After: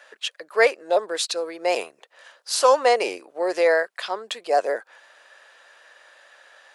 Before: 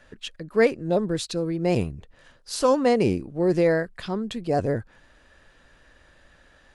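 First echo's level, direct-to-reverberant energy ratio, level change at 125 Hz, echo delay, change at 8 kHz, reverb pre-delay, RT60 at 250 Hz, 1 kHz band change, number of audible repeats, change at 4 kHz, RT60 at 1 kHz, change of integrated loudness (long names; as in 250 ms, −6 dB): no echo audible, no reverb audible, below −30 dB, no echo audible, +7.0 dB, no reverb audible, no reverb audible, +6.5 dB, no echo audible, +7.0 dB, no reverb audible, +1.5 dB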